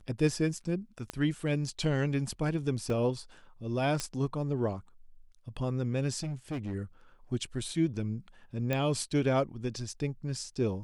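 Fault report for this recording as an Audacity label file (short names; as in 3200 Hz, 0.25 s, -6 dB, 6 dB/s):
1.100000	1.100000	pop -21 dBFS
2.900000	2.900000	gap 2.1 ms
4.000000	4.000000	pop -17 dBFS
6.230000	6.740000	clipped -31.5 dBFS
8.730000	8.730000	pop -17 dBFS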